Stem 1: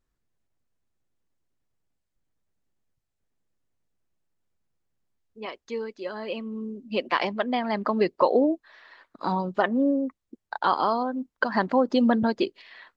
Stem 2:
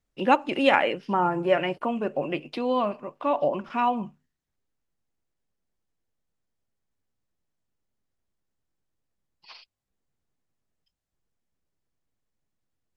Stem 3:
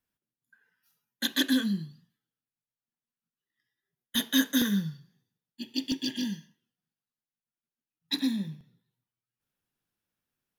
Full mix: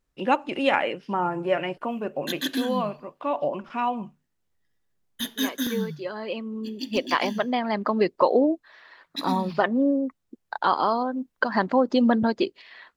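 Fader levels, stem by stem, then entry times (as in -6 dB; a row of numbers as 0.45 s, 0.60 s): +1.0 dB, -2.0 dB, -2.5 dB; 0.00 s, 0.00 s, 1.05 s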